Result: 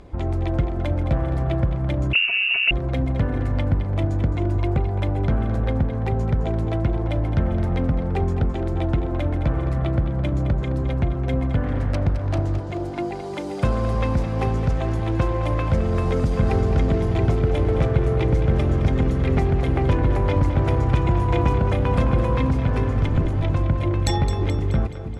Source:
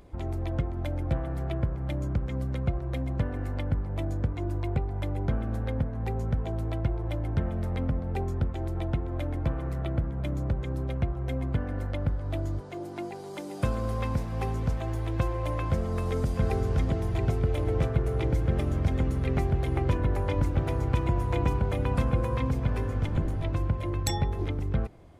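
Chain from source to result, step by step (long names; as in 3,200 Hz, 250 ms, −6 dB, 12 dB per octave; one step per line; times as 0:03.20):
0:11.63–0:12.58: phase distortion by the signal itself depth 0.63 ms
in parallel at −10 dB: wave folding −25.5 dBFS
on the sum: high-frequency loss of the air 58 metres
on a send: echo with a time of its own for lows and highs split 320 Hz, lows 314 ms, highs 214 ms, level −10.5 dB
0:02.13–0:02.71: on the sum: voice inversion scrambler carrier 2,800 Hz
level +6 dB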